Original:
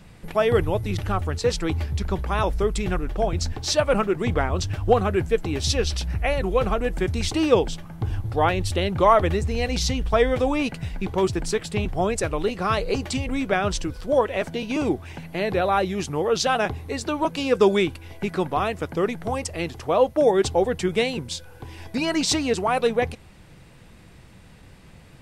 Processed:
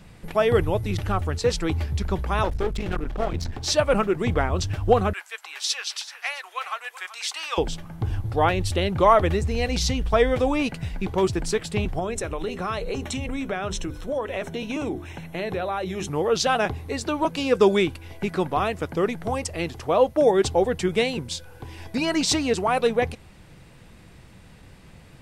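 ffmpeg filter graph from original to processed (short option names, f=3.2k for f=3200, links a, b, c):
-filter_complex "[0:a]asettb=1/sr,asplit=3[a][b][c];[a]atrim=end=2.444[d];[b]atrim=start=2.44:end=3.63,asetpts=PTS-STARTPTS,afade=t=in:d=0.004:c=qsin,afade=t=out:st=1.186:d=0.004:c=qsin,acrossover=split=5000[e][f];[f]acompressor=threshold=-39dB:ratio=4:attack=1:release=60[g];[e][g]amix=inputs=2:normalize=0,highshelf=f=9.2k:g=-7,aeval=exprs='clip(val(0),-1,0.0282)':c=same[h];[c]atrim=start=3.626[i];[d][h]acrossfade=d=0.004:c1=hsin:c2=qsin[j];[j][i]acrossfade=d=0.004:c1=qsin:c2=hsin,asettb=1/sr,asplit=3[k][l][m];[k]atrim=end=5.134[n];[l]atrim=start=5.13:end=7.58,asetpts=PTS-STARTPTS,afade=t=in:d=0.004:c=qsin,afade=t=out:st=2.446:d=0.004:c=qsin,highpass=f=1k:w=0.5412,highpass=f=1k:w=1.3066,aecho=1:1:381:0.168,atrim=end_sample=108045[o];[m]atrim=start=7.576[p];[n][o]acrossfade=d=0.004:c1=hsin:c2=qsin[q];[q][p]acrossfade=d=0.004:c1=qsin:c2=hsin,asettb=1/sr,asplit=3[r][s][t];[r]atrim=end=11.994[u];[s]atrim=start=11.99:end=16.08,asetpts=PTS-STARTPTS,afade=t=in:d=0.004:c=qsin,afade=t=out:st=4.086:d=0.004:c=qsin,asuperstop=centerf=4700:order=12:qfactor=6.7,bandreject=f=50:t=h:w=6,bandreject=f=100:t=h:w=6,bandreject=f=150:t=h:w=6,bandreject=f=200:t=h:w=6,bandreject=f=250:t=h:w=6,bandreject=f=300:t=h:w=6,bandreject=f=350:t=h:w=6,bandreject=f=400:t=h:w=6,acompressor=threshold=-25dB:ratio=3:attack=3.2:release=140:knee=1:detection=peak[v];[t]atrim=start=16.076[w];[u][v]acrossfade=d=0.004:c1=hsin:c2=qsin[x];[x][w]acrossfade=d=0.004:c1=qsin:c2=hsin"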